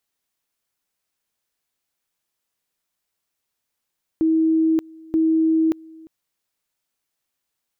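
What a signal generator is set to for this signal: two-level tone 321 Hz -14.5 dBFS, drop 25 dB, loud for 0.58 s, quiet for 0.35 s, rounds 2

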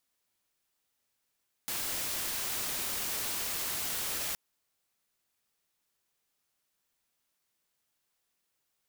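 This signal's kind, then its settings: noise white, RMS -34.5 dBFS 2.67 s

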